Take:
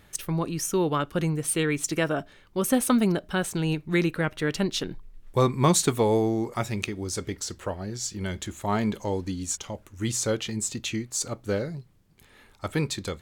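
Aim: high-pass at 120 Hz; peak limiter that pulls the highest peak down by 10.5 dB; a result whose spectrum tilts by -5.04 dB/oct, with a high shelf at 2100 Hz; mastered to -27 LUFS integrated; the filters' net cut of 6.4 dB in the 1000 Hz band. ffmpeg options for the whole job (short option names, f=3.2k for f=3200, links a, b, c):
-af "highpass=120,equalizer=f=1k:t=o:g=-7,highshelf=f=2.1k:g=-5.5,volume=4.5dB,alimiter=limit=-14.5dB:level=0:latency=1"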